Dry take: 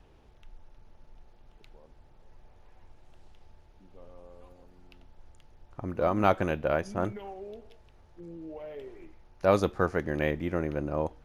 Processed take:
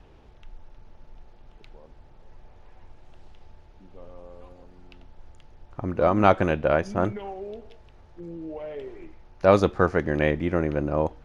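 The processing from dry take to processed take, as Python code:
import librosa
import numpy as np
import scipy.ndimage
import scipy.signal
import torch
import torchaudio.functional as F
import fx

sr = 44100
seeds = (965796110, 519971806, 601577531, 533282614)

y = fx.air_absorb(x, sr, metres=54.0)
y = y * librosa.db_to_amplitude(6.0)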